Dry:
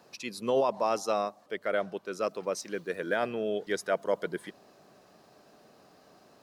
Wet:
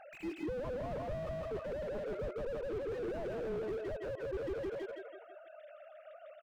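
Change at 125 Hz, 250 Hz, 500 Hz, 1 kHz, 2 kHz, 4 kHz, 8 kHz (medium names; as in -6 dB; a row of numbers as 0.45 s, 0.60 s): +2.5 dB, -5.0 dB, -7.0 dB, -15.0 dB, -12.5 dB, -15.0 dB, under -20 dB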